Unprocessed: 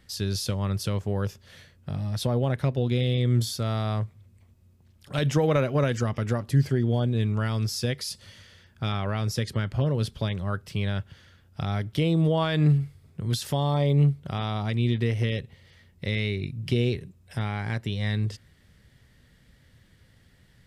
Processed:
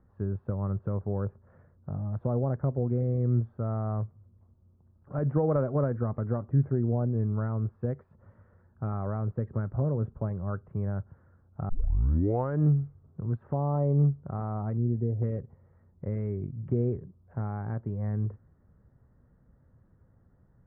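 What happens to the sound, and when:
11.69 s: tape start 0.91 s
14.77–15.22 s: boxcar filter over 36 samples
whole clip: steep low-pass 1.3 kHz 36 dB/octave; dynamic bell 1 kHz, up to -3 dB, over -48 dBFS, Q 2.8; trim -3 dB

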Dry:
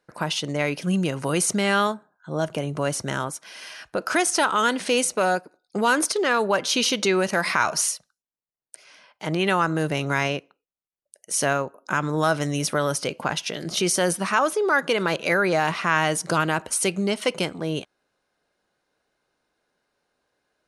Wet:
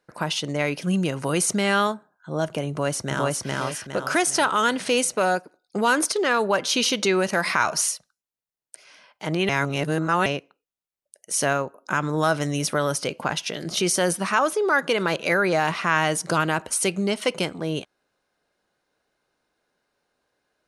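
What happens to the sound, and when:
2.70–3.45 s: echo throw 410 ms, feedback 40%, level -0.5 dB
9.49–10.26 s: reverse

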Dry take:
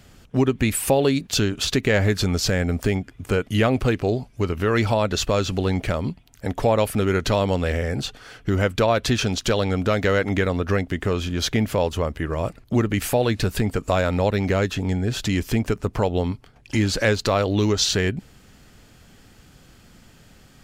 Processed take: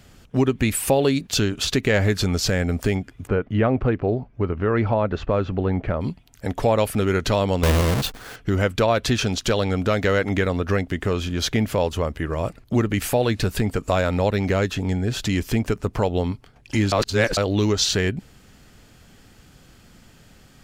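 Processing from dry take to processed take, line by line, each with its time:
3.27–6.01 s: low-pass 1.6 kHz
7.63–8.36 s: square wave that keeps the level
16.92–17.37 s: reverse

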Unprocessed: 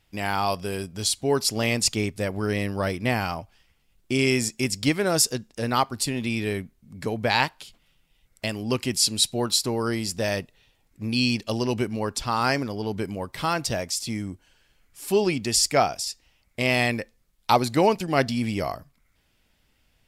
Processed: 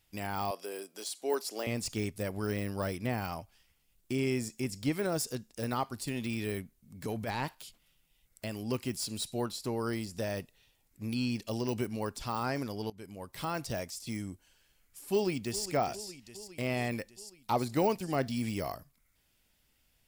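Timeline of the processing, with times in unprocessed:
0.51–1.67 s: high-pass 320 Hz 24 dB/octave
7.05–7.55 s: transient shaper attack -11 dB, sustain +4 dB
9.41–10.16 s: treble shelf 3.8 kHz -6 dB
12.90–13.50 s: fade in, from -19.5 dB
15.11–15.69 s: echo throw 410 ms, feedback 65%, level -14 dB
whole clip: de-esser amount 100%; treble shelf 6.4 kHz +12 dB; trim -7.5 dB

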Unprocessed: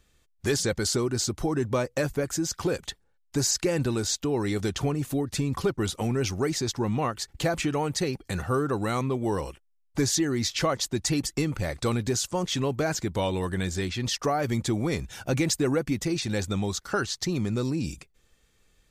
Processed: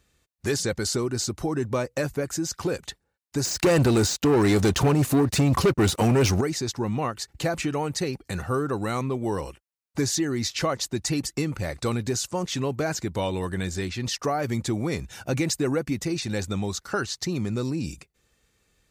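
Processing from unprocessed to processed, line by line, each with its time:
3.45–6.41 s: waveshaping leveller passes 3
whole clip: de-esser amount 40%; high-pass 47 Hz; band-stop 3.3 kHz, Q 15

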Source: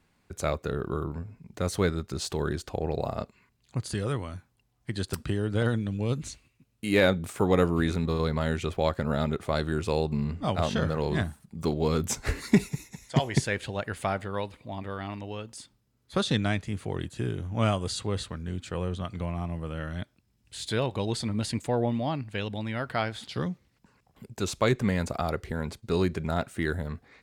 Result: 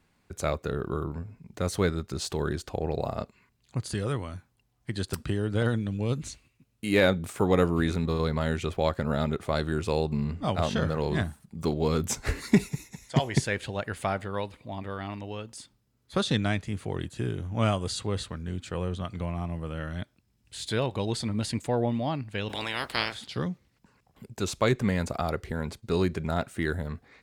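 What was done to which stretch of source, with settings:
22.48–23.13 s: spectral peaks clipped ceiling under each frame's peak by 27 dB

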